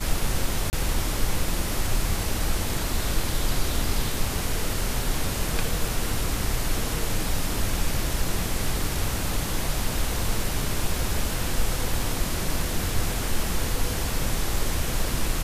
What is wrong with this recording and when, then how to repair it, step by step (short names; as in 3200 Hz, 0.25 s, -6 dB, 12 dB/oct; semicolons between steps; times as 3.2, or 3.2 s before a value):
0.7–0.73 gap 29 ms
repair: interpolate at 0.7, 29 ms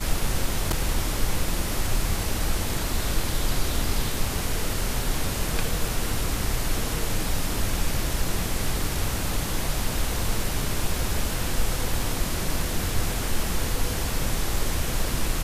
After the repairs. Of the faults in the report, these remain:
none